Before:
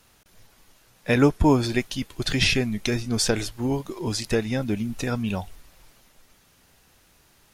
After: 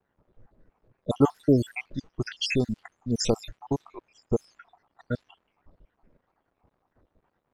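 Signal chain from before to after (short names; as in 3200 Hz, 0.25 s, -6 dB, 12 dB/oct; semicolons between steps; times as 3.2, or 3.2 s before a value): random spectral dropouts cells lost 78%; crackle 480/s -50 dBFS; low-pass opened by the level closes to 810 Hz, open at -21 dBFS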